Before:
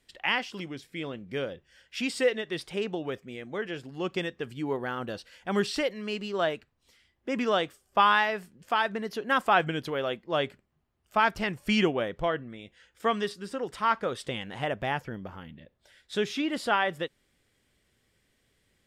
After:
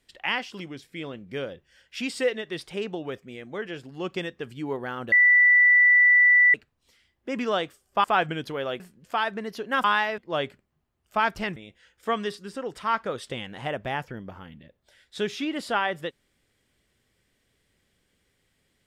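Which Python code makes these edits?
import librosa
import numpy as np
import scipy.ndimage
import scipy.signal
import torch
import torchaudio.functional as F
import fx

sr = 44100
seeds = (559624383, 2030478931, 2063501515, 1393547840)

y = fx.edit(x, sr, fx.bleep(start_s=5.12, length_s=1.42, hz=1970.0, db=-13.5),
    fx.swap(start_s=8.04, length_s=0.34, other_s=9.42, other_length_s=0.76),
    fx.cut(start_s=11.56, length_s=0.97), tone=tone)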